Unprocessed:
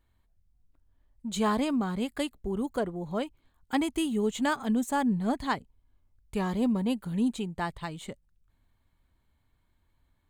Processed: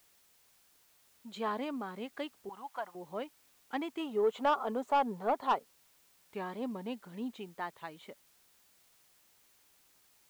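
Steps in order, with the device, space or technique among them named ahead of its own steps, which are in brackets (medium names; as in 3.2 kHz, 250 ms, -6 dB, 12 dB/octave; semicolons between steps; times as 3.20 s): 4.00–5.99 s: time-frequency box 380–1500 Hz +10 dB; tape answering machine (band-pass 340–3100 Hz; saturation -15 dBFS, distortion -15 dB; wow and flutter; white noise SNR 29 dB); 2.49–2.95 s: resonant low shelf 590 Hz -12 dB, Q 3; trim -5.5 dB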